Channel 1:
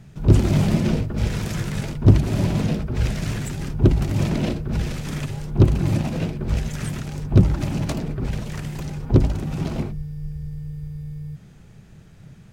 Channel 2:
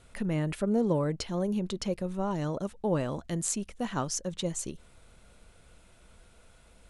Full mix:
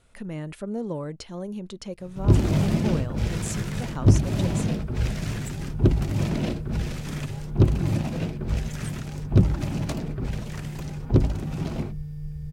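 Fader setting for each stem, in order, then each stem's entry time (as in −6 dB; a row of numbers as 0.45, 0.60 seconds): −3.5, −4.0 decibels; 2.00, 0.00 seconds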